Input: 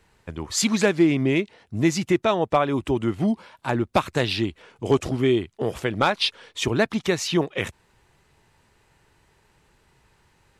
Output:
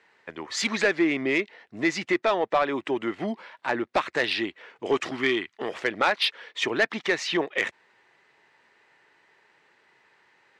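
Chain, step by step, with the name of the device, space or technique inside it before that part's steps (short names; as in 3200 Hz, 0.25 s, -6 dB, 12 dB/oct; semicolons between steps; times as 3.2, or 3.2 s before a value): intercom (BPF 360–4600 Hz; bell 1900 Hz +8 dB 0.5 oct; soft clip -13 dBFS, distortion -15 dB); 4.95–5.69 EQ curve 300 Hz 0 dB, 520 Hz -7 dB, 1100 Hz +4 dB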